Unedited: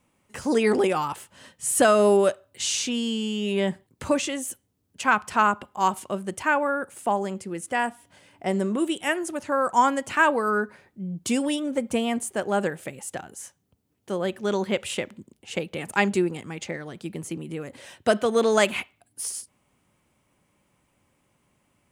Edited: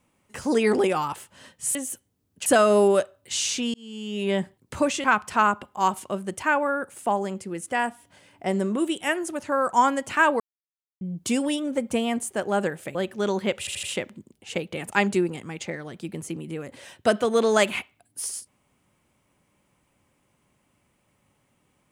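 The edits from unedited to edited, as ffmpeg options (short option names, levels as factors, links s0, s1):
-filter_complex "[0:a]asplit=11[s0][s1][s2][s3][s4][s5][s6][s7][s8][s9][s10];[s0]atrim=end=1.752[s11];[s1]atrim=start=4.328:end=5.042[s12];[s2]atrim=start=1.748:end=3.03,asetpts=PTS-STARTPTS,afade=t=out:st=1.278:d=0.004:c=hsin[s13];[s3]atrim=start=3.03:end=4.332,asetpts=PTS-STARTPTS,afade=t=in:d=0.58[s14];[s4]atrim=start=5.038:end=10.4,asetpts=PTS-STARTPTS,afade=t=out:st=5.358:d=0.004:c=hsin[s15];[s5]atrim=start=10.4:end=11.01,asetpts=PTS-STARTPTS,volume=0[s16];[s6]atrim=start=11.01:end=12.952,asetpts=PTS-STARTPTS,afade=t=in:d=0.004:c=hsin[s17];[s7]atrim=start=14.198:end=14.922[s18];[s8]atrim=start=14.838:end=14.922[s19];[s9]atrim=start=14.838:end=14.922[s20];[s10]atrim=start=14.838[s21];[s11][s12]acrossfade=d=0.004:c1=hsin:c2=hsin[s22];[s13][s14]concat=n=2:v=0:a=1[s23];[s22][s23]acrossfade=d=0.004:c1=hsin:c2=hsin[s24];[s15][s16][s17]concat=n=3:v=0:a=1[s25];[s24][s25]acrossfade=d=0.004:c1=hsin:c2=hsin[s26];[s26][s18]acrossfade=d=0.004:c1=hsin:c2=hsin[s27];[s27][s19]acrossfade=d=0.004:c1=hsin:c2=hsin[s28];[s28][s20]acrossfade=d=0.004:c1=hsin:c2=hsin[s29];[s29][s21]acrossfade=d=0.004:c1=hsin:c2=hsin"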